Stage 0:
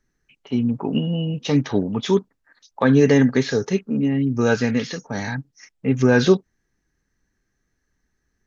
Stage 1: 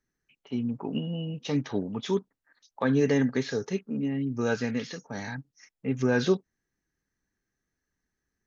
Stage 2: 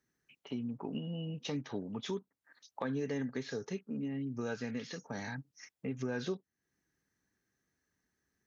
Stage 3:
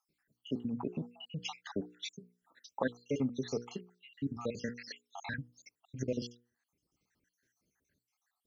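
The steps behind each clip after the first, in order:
low-shelf EQ 61 Hz −8.5 dB; level −8.5 dB
high-pass filter 75 Hz; downward compressor 2.5 to 1, threshold −42 dBFS, peak gain reduction 16 dB; level +1.5 dB
time-frequency cells dropped at random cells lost 68%; mains-hum notches 60/120/180/240/300/360/420/480 Hz; level +6 dB

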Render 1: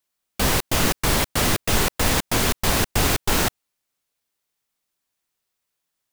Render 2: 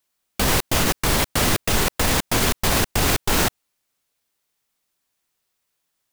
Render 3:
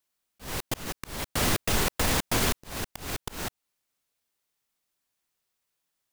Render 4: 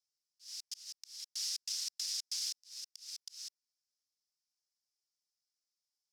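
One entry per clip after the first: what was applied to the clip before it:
brickwall limiter −13 dBFS, peak gain reduction 6.5 dB; level +4 dB
volume swells 408 ms; level −5.5 dB
four-pole ladder band-pass 5,600 Hz, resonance 70%; level +1 dB

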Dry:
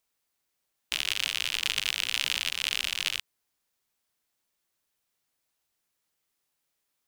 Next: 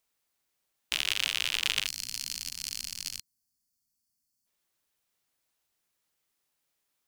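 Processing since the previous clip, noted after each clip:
gain on a spectral selection 0:01.86–0:04.46, 300–4,200 Hz −16 dB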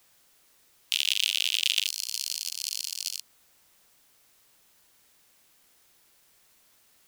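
Chebyshev high-pass filter 2,900 Hz, order 3
background noise white −68 dBFS
level +5 dB

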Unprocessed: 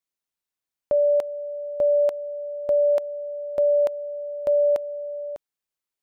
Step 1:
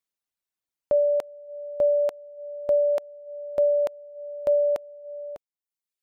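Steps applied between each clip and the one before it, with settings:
reverb reduction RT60 0.93 s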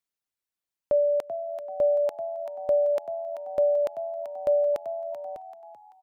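echo with shifted repeats 386 ms, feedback 35%, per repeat +86 Hz, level −11 dB
level −1.5 dB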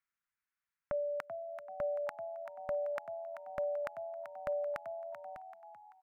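drawn EQ curve 160 Hz 0 dB, 270 Hz −6 dB, 430 Hz −18 dB, 1,400 Hz +10 dB, 2,200 Hz +6 dB, 3,300 Hz −7 dB
level −2.5 dB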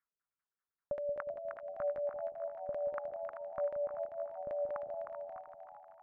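auto-filter low-pass saw down 5.1 Hz 310–1,800 Hz
echo with a time of its own for lows and highs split 660 Hz, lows 180 ms, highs 309 ms, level −6 dB
level −5 dB

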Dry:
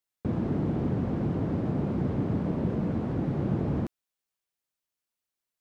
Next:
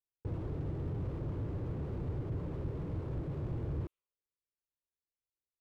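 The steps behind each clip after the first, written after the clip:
low-pass that shuts in the quiet parts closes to 320 Hz
phaser with its sweep stopped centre 1,100 Hz, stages 8
slew-rate limiting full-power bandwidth 3 Hz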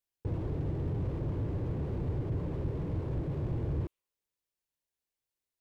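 parametric band 1,300 Hz −4.5 dB 0.3 octaves
level +4 dB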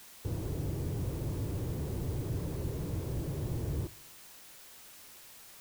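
background noise white −51 dBFS
on a send at −19.5 dB: convolution reverb RT60 0.85 s, pre-delay 40 ms
on the sum: level −2 dB

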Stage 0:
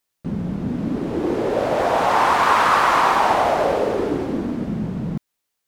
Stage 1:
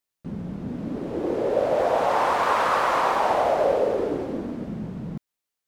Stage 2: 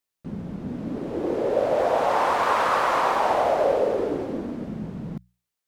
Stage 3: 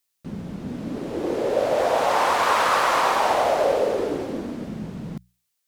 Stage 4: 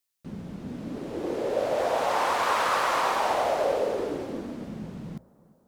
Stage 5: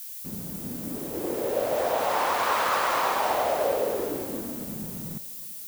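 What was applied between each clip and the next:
dynamic equaliser 540 Hz, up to +8 dB, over −34 dBFS, Q 1.8; level −7.5 dB
mains-hum notches 60/120/180 Hz
high-shelf EQ 2,300 Hz +9.5 dB
bucket-brigade delay 346 ms, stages 4,096, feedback 54%, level −23.5 dB; level −5 dB
background noise violet −39 dBFS

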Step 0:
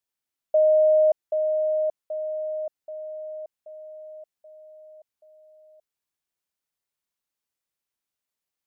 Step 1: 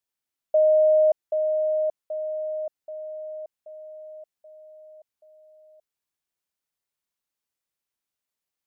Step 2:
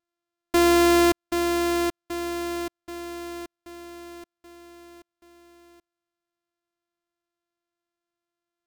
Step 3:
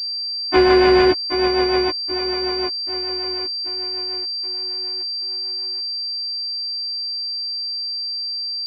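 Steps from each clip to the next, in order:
no processing that can be heard
samples sorted by size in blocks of 128 samples
every partial snapped to a pitch grid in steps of 3 semitones; rotating-speaker cabinet horn 6.7 Hz; switching amplifier with a slow clock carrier 4,700 Hz; level +7 dB

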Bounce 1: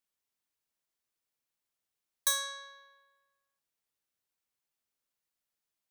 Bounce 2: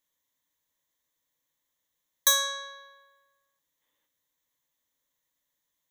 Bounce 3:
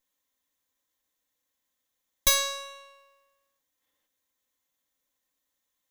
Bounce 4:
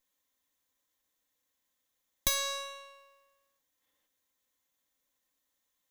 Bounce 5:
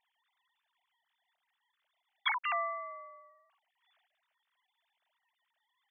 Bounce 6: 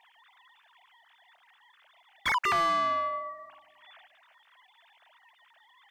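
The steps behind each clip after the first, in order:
gain on a spectral selection 0:03.81–0:04.07, 210–3,700 Hz +7 dB; EQ curve with evenly spaced ripples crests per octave 1.1, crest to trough 10 dB; level +5.5 dB
lower of the sound and its delayed copy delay 3.8 ms; level +1.5 dB
downward compressor 3 to 1, threshold −28 dBFS, peak gain reduction 8.5 dB
three sine waves on the formant tracks
mid-hump overdrive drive 30 dB, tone 2,100 Hz, clips at −18.5 dBFS; bucket-brigade delay 309 ms, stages 2,048, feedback 32%, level −20 dB

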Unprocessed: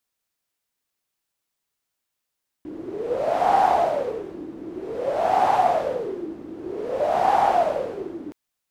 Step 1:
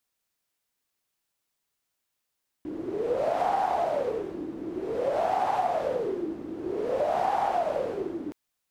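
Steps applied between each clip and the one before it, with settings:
downward compressor 6 to 1, threshold −23 dBFS, peak gain reduction 9.5 dB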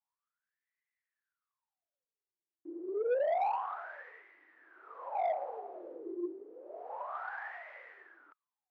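LFO wah 0.29 Hz 330–2,000 Hz, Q 16
low-shelf EQ 310 Hz −11 dB
mid-hump overdrive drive 18 dB, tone 2,400 Hz, clips at −20 dBFS
level −2 dB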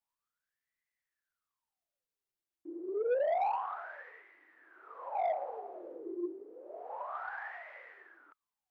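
low-shelf EQ 69 Hz +8 dB

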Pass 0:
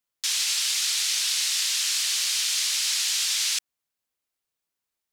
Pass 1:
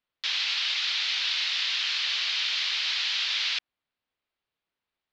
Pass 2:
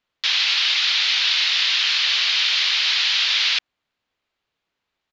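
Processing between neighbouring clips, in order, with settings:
inverse Chebyshev low-pass filter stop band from 9,100 Hz, stop band 50 dB; level +3 dB
downsampling to 16,000 Hz; level +8.5 dB

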